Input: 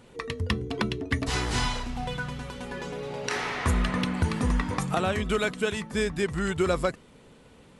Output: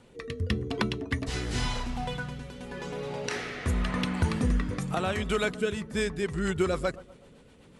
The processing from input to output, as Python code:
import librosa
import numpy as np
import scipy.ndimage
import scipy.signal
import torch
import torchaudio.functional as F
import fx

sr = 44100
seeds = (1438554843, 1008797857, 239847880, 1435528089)

y = fx.rotary_switch(x, sr, hz=0.9, then_hz=8.0, switch_at_s=5.75)
y = fx.echo_bbd(y, sr, ms=123, stages=1024, feedback_pct=48, wet_db=-17.5)